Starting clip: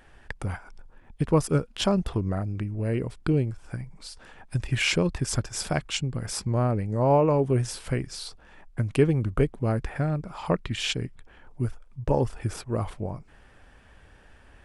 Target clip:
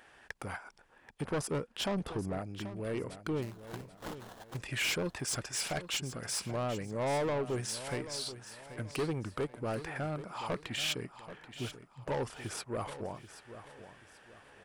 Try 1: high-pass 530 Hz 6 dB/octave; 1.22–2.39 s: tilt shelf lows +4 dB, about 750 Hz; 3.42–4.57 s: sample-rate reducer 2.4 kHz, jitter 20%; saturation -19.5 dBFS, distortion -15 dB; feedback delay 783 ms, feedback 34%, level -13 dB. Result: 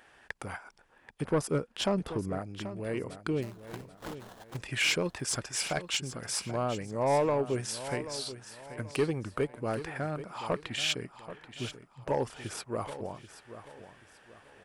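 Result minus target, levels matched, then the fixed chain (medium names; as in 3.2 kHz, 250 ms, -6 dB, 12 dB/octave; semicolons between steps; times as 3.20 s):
saturation: distortion -8 dB
high-pass 530 Hz 6 dB/octave; 1.22–2.39 s: tilt shelf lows +4 dB, about 750 Hz; 3.42–4.57 s: sample-rate reducer 2.4 kHz, jitter 20%; saturation -29 dBFS, distortion -7 dB; feedback delay 783 ms, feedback 34%, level -13 dB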